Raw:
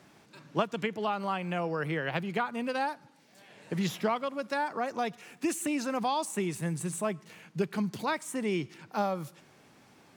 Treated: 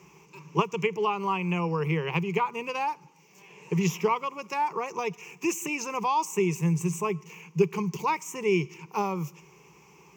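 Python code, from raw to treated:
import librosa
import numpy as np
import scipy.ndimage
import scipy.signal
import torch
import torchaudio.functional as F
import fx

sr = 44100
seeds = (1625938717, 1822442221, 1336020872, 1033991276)

y = fx.ripple_eq(x, sr, per_octave=0.76, db=18)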